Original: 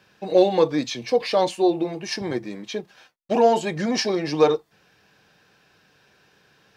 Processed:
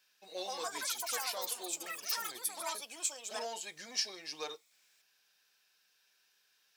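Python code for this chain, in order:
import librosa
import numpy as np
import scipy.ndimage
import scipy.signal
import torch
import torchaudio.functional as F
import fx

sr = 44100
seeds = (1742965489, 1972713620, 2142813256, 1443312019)

y = fx.echo_pitch(x, sr, ms=230, semitones=6, count=3, db_per_echo=-3.0)
y = np.diff(y, prepend=0.0)
y = y * librosa.db_to_amplitude(-4.0)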